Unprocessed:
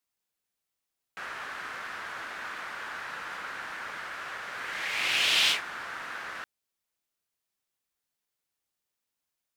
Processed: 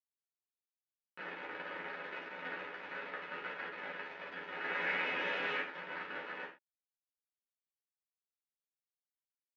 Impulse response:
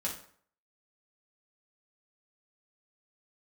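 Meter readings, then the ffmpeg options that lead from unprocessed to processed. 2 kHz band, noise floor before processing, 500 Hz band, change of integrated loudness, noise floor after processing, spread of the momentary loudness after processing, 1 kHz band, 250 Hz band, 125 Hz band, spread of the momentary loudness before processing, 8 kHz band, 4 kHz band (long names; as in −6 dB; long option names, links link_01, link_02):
−6.0 dB, below −85 dBFS, +2.5 dB, −9.0 dB, below −85 dBFS, 11 LU, −5.5 dB, +1.0 dB, −2.5 dB, 16 LU, below −30 dB, −18.0 dB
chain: -filter_complex "[0:a]aeval=exprs='0.266*(cos(1*acos(clip(val(0)/0.266,-1,1)))-cos(1*PI/2))+0.00422*(cos(3*acos(clip(val(0)/0.266,-1,1)))-cos(3*PI/2))+0.075*(cos(4*acos(clip(val(0)/0.266,-1,1)))-cos(4*PI/2))+0.0106*(cos(5*acos(clip(val(0)/0.266,-1,1)))-cos(5*PI/2))+0.00668*(cos(6*acos(clip(val(0)/0.266,-1,1)))-cos(6*PI/2))':channel_layout=same,alimiter=limit=-20.5dB:level=0:latency=1:release=18,aresample=16000,acrusher=bits=4:mix=0:aa=0.000001,aresample=44100,highpass=390,equalizer=frequency=390:width_type=q:width=4:gain=5,equalizer=frequency=690:width_type=q:width=4:gain=-5,equalizer=frequency=1100:width_type=q:width=4:gain=-8,lowpass=frequency=2200:width=0.5412,lowpass=frequency=2200:width=1.3066,asplit=2[link_01][link_02];[link_02]adelay=12,volume=-5.5dB[link_03];[link_01][link_03]amix=inputs=2:normalize=0[link_04];[1:a]atrim=start_sample=2205,atrim=end_sample=6174[link_05];[link_04][link_05]afir=irnorm=-1:irlink=0,volume=-1dB"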